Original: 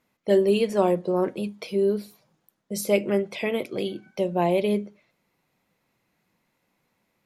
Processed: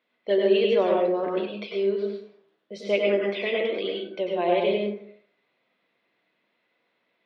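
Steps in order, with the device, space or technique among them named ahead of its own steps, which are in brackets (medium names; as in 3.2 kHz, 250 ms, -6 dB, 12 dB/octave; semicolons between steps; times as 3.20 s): phone earpiece (cabinet simulation 410–3800 Hz, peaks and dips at 860 Hz -8 dB, 1.3 kHz -4 dB, 3.5 kHz +5 dB); plate-style reverb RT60 0.59 s, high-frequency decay 0.5×, pre-delay 85 ms, DRR -1.5 dB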